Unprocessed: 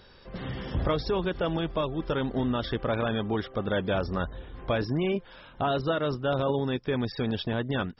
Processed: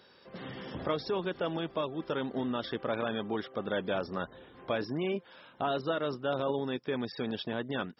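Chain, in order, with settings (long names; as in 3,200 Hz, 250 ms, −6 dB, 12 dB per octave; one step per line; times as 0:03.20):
high-pass filter 190 Hz 12 dB per octave
level −4 dB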